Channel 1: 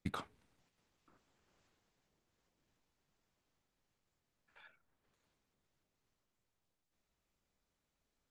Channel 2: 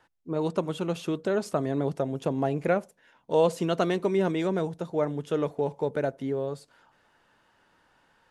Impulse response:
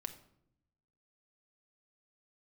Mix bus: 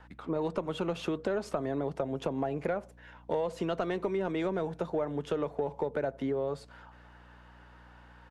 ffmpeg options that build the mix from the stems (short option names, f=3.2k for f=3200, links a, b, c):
-filter_complex "[0:a]adelay=50,volume=-9.5dB[a];[1:a]acompressor=threshold=-30dB:ratio=6,volume=2.5dB[b];[a][b]amix=inputs=2:normalize=0,asplit=2[c][d];[d]highpass=f=720:p=1,volume=13dB,asoftclip=type=tanh:threshold=-13.5dB[e];[c][e]amix=inputs=2:normalize=0,lowpass=f=1.5k:p=1,volume=-6dB,aeval=exprs='val(0)+0.00178*(sin(2*PI*60*n/s)+sin(2*PI*2*60*n/s)/2+sin(2*PI*3*60*n/s)/3+sin(2*PI*4*60*n/s)/4+sin(2*PI*5*60*n/s)/5)':c=same,acrossover=split=190[f][g];[g]acompressor=threshold=-33dB:ratio=1.5[h];[f][h]amix=inputs=2:normalize=0"